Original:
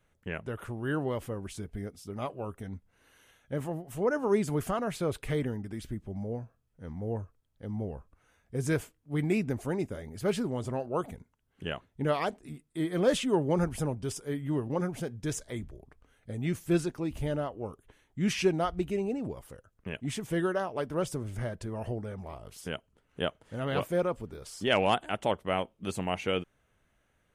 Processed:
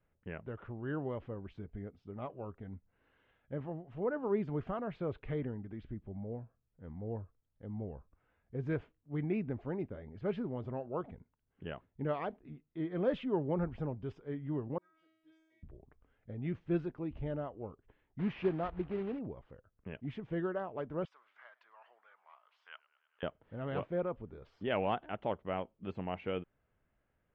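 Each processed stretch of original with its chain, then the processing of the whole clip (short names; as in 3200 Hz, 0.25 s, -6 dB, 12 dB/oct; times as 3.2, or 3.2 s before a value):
14.78–15.63 Bessel low-pass 8200 Hz + tilt +3.5 dB/oct + resonator 320 Hz, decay 1 s, mix 100%
18.19–19.2 block floating point 3-bit + LPF 2800 Hz 6 dB/oct
21.05–23.23 Chebyshev high-pass 1100 Hz, order 3 + warbling echo 0.104 s, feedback 78%, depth 125 cents, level -23 dB
whole clip: LPF 3300 Hz 24 dB/oct; high shelf 2200 Hz -10 dB; gain -6 dB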